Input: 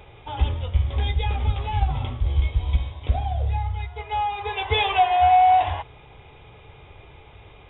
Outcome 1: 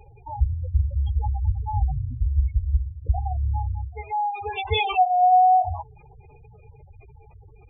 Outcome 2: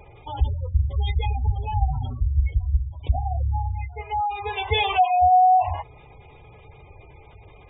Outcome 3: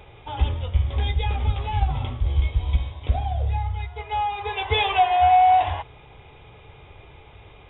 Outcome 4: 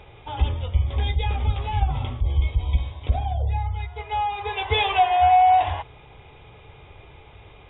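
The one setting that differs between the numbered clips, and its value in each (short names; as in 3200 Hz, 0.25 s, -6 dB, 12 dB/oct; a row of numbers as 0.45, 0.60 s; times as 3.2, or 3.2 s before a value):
spectral gate, under each frame's peak: -10, -20, -60, -45 dB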